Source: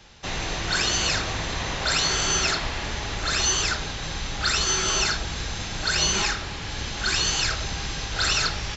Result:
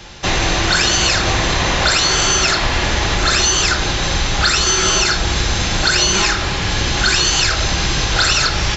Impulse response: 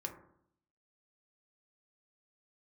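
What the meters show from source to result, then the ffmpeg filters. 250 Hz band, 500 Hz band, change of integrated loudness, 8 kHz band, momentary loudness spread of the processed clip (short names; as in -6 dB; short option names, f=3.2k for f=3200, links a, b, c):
+11.5 dB, +11.0 dB, +9.5 dB, n/a, 5 LU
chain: -filter_complex "[0:a]acompressor=threshold=-25dB:ratio=6,asplit=2[a][b];[1:a]atrim=start_sample=2205[c];[b][c]afir=irnorm=-1:irlink=0,volume=0dB[d];[a][d]amix=inputs=2:normalize=0,volume=9dB"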